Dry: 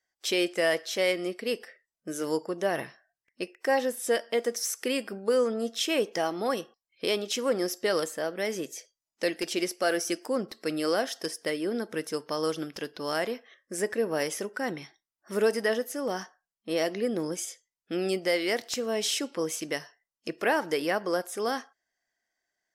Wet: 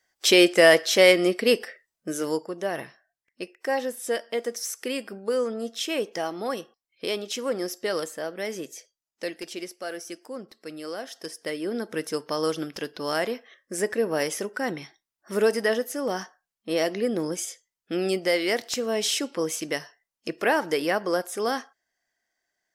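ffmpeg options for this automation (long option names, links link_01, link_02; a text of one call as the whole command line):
ffmpeg -i in.wav -af "volume=21dB,afade=type=out:start_time=1.48:duration=1:silence=0.281838,afade=type=out:start_time=8.73:duration=1.04:silence=0.446684,afade=type=in:start_time=10.98:duration=1.08:silence=0.281838" out.wav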